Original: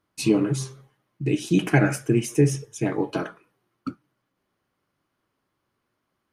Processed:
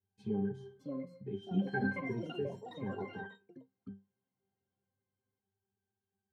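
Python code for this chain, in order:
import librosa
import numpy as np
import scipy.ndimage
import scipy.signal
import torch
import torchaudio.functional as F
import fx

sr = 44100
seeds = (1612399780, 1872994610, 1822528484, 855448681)

y = fx.octave_resonator(x, sr, note='G', decay_s=0.24)
y = fx.echo_pitch(y, sr, ms=660, semitones=5, count=3, db_per_echo=-6.0)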